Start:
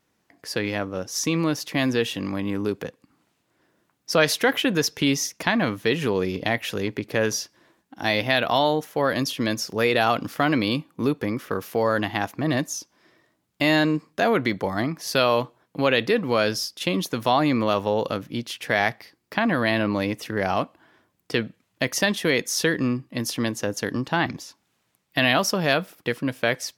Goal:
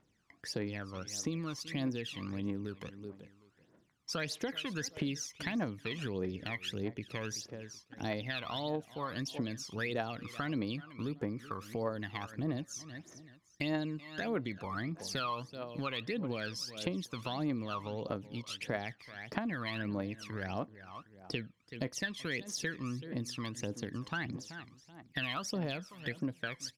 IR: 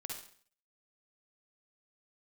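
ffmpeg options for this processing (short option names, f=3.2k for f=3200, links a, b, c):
-af "lowpass=8.1k,aecho=1:1:380|760:0.126|0.0315,aphaser=in_gain=1:out_gain=1:delay=1:decay=0.73:speed=1.6:type=triangular,acompressor=threshold=-31dB:ratio=2.5,volume=-8dB"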